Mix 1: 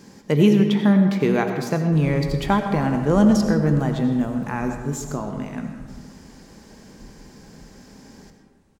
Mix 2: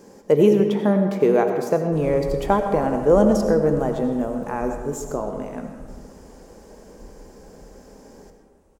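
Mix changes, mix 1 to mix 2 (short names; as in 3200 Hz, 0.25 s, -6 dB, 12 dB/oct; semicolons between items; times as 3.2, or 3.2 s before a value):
background: send +10.0 dB; master: add ten-band EQ 125 Hz -9 dB, 250 Hz -3 dB, 500 Hz +9 dB, 2000 Hz -5 dB, 4000 Hz -8 dB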